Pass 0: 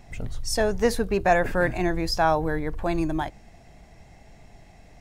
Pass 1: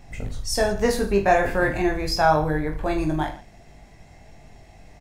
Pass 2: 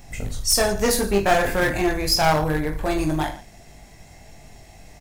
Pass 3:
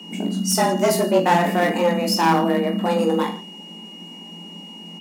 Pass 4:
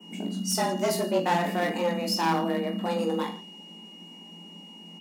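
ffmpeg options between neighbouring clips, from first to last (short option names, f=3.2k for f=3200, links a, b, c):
-af "aecho=1:1:20|45|76.25|115.3|164.1:0.631|0.398|0.251|0.158|0.1"
-af "aeval=exprs='clip(val(0),-1,0.0891)':c=same,crystalizer=i=2:c=0,volume=1.5dB"
-af "tiltshelf=f=940:g=3.5,aeval=exprs='val(0)+0.0126*sin(2*PI*2700*n/s)':c=same,afreqshift=170"
-af "adynamicequalizer=threshold=0.00794:dfrequency=4100:dqfactor=1.5:tfrequency=4100:tqfactor=1.5:attack=5:release=100:ratio=0.375:range=2:mode=boostabove:tftype=bell,volume=-8dB"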